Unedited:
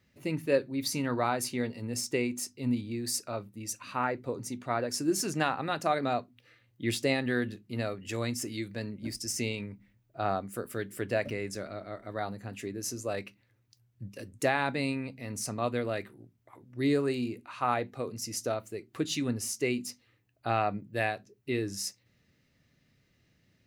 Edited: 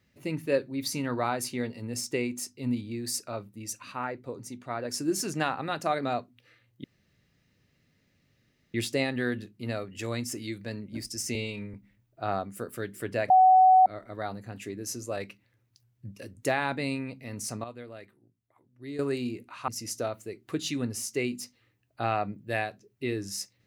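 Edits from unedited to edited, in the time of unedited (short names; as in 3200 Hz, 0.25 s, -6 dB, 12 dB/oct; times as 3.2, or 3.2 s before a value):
3.92–4.85 gain -3.5 dB
6.84 insert room tone 1.90 s
9.45–9.71 stretch 1.5×
11.27–11.83 bleep 749 Hz -14 dBFS
15.61–16.96 gain -12 dB
17.65–18.14 cut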